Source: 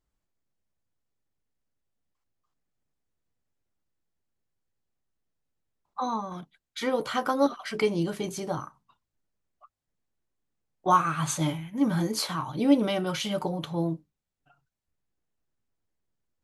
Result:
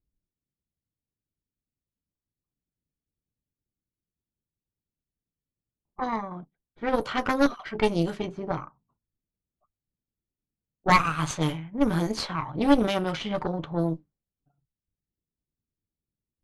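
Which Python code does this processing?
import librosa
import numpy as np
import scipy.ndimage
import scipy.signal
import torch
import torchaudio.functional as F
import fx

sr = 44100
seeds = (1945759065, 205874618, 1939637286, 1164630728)

y = fx.cheby_harmonics(x, sr, harmonics=(4,), levels_db=(-8,), full_scale_db=-8.5)
y = fx.env_lowpass(y, sr, base_hz=320.0, full_db=-20.5)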